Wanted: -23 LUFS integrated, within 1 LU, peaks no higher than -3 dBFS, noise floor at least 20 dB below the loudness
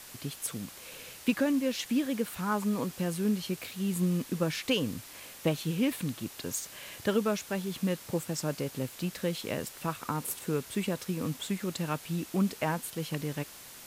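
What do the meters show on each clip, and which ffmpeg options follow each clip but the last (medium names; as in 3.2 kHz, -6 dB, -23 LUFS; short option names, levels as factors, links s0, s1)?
noise floor -49 dBFS; noise floor target -53 dBFS; loudness -32.5 LUFS; peak level -15.0 dBFS; loudness target -23.0 LUFS
-> -af "afftdn=nr=6:nf=-49"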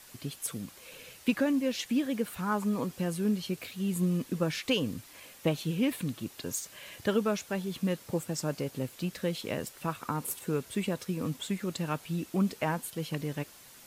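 noise floor -53 dBFS; loudness -32.5 LUFS; peak level -15.0 dBFS; loudness target -23.0 LUFS
-> -af "volume=2.99"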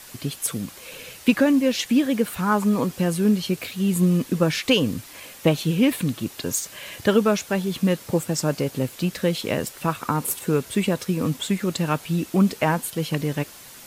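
loudness -23.0 LUFS; peak level -5.5 dBFS; noise floor -44 dBFS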